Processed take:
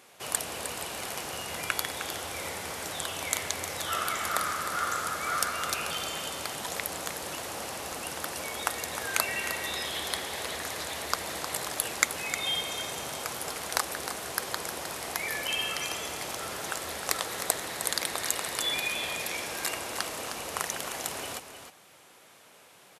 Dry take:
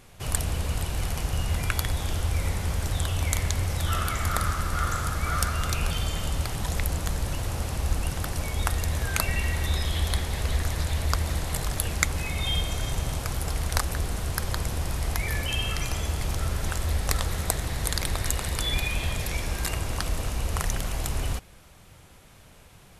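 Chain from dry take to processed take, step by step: HPF 360 Hz 12 dB/oct; echo 0.309 s -9.5 dB

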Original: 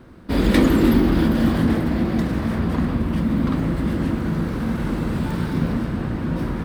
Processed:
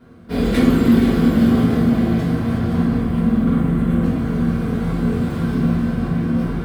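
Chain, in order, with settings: 3–4.02 bell 4800 Hz -13 dB 0.59 oct; diffused feedback echo 0.489 s, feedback 45%, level -6 dB; reverb RT60 0.50 s, pre-delay 3 ms, DRR -7.5 dB; gain -9 dB

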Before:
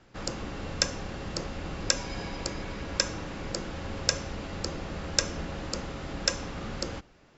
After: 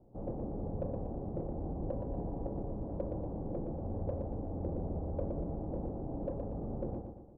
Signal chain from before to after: steep low-pass 770 Hz 36 dB/oct; in parallel at -12 dB: soft clip -35 dBFS, distortion -12 dB; on the sum: feedback echo 0.118 s, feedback 47%, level -5.5 dB; gain -3.5 dB

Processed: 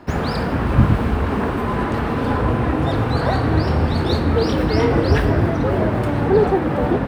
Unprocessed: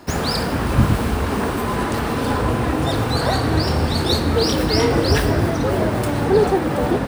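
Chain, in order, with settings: tone controls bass +2 dB, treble -15 dB

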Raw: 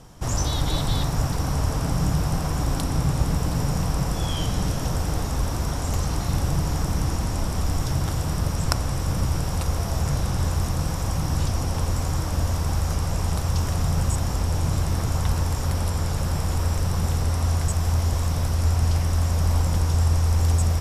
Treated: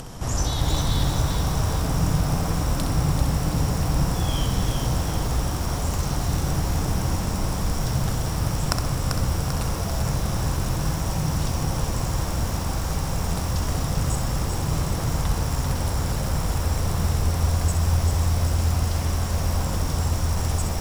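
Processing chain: upward compressor, threshold -27 dBFS; on a send: flutter echo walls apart 11.1 m, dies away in 0.51 s; on the sum: lo-fi delay 0.392 s, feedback 55%, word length 6-bit, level -5 dB; gain -1 dB

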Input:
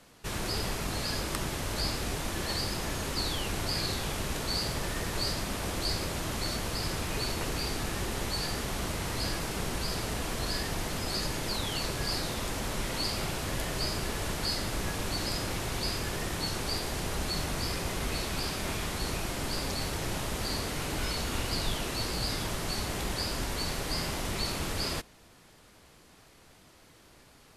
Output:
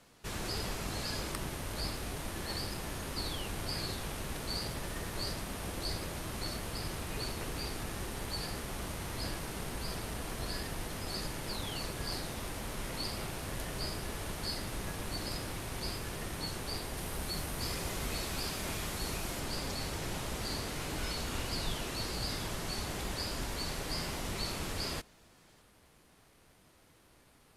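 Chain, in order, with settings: 16.97–19.4 high shelf 10000 Hz +7 dB; gain -4.5 dB; Opus 48 kbps 48000 Hz

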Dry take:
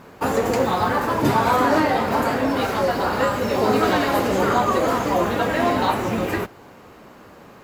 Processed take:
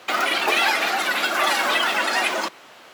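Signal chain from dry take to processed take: frequency shift +28 Hz; wide varispeed 2.6×; gain -1.5 dB

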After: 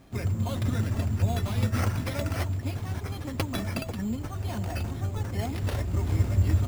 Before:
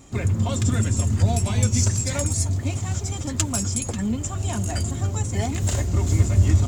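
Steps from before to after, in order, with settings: sample-and-hold 6×; gain -6 dB

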